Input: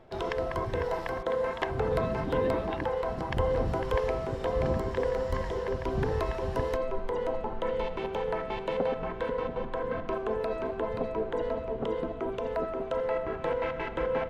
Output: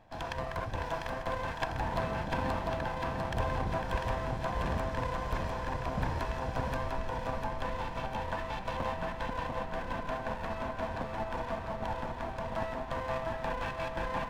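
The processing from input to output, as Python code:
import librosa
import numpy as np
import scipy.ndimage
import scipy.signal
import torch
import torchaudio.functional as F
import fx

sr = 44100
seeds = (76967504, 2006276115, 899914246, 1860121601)

p1 = fx.lower_of_two(x, sr, delay_ms=1.2)
p2 = p1 + fx.echo_feedback(p1, sr, ms=698, feedback_pct=55, wet_db=-5, dry=0)
y = p2 * librosa.db_to_amplitude(-3.0)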